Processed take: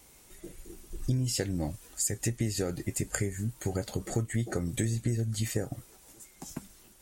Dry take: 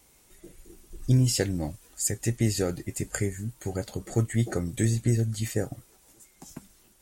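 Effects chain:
downward compressor 5 to 1, threshold −30 dBFS, peak gain reduction 12 dB
level +3 dB

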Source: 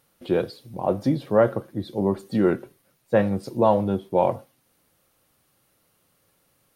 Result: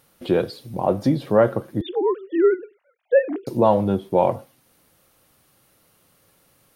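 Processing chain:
0:01.81–0:03.47: three sine waves on the formant tracks
in parallel at 0 dB: downward compressor, threshold −27 dBFS, peak gain reduction 14 dB

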